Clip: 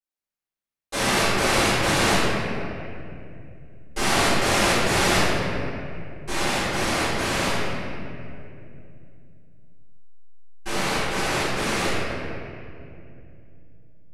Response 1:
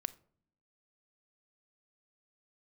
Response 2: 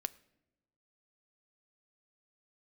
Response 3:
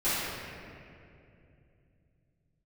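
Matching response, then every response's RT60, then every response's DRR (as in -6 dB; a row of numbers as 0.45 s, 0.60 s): 3; no single decay rate, no single decay rate, 2.6 s; 14.5 dB, 13.5 dB, -16.5 dB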